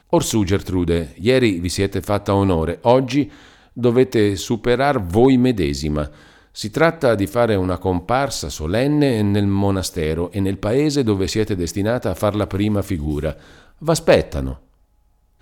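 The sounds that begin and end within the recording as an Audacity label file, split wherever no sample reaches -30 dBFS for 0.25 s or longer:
3.770000	6.080000	sound
6.570000	13.330000	sound
13.820000	14.540000	sound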